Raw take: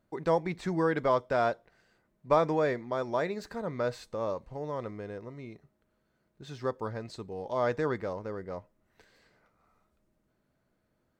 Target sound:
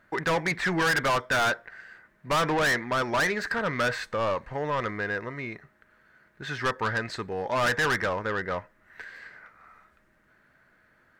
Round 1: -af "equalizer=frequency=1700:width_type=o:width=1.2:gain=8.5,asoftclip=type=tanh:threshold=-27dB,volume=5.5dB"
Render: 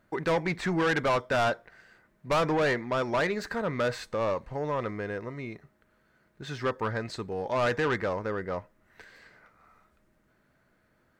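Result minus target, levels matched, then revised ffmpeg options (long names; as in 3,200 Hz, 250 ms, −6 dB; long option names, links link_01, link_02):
2,000 Hz band −4.0 dB
-af "equalizer=frequency=1700:width_type=o:width=1.2:gain=20,asoftclip=type=tanh:threshold=-27dB,volume=5.5dB"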